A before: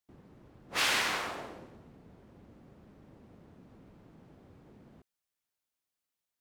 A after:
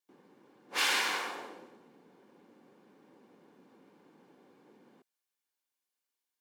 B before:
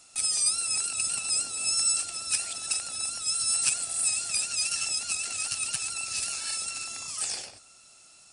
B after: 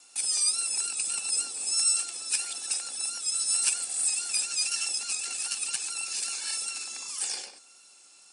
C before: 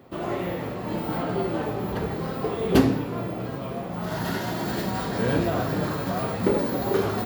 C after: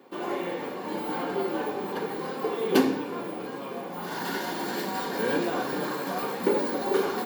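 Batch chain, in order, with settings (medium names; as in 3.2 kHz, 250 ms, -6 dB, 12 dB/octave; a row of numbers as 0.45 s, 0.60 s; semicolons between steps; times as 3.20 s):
vibrato 1.7 Hz 18 cents; Bessel high-pass 320 Hz, order 4; comb of notches 650 Hz; trim +1 dB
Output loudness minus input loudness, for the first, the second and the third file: 0.0 LU, -0.5 LU, -2.5 LU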